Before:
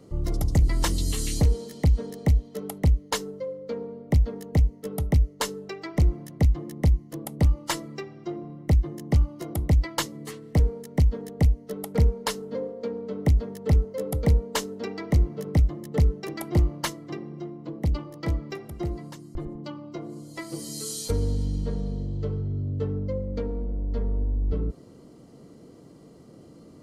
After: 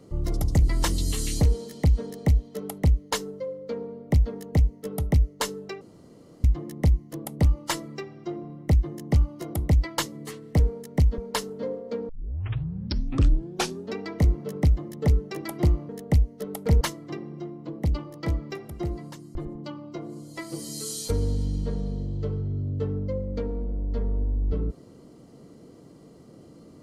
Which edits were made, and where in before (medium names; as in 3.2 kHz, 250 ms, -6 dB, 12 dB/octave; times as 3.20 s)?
5.81–6.44 s: room tone
11.18–12.10 s: move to 16.81 s
13.01 s: tape start 1.87 s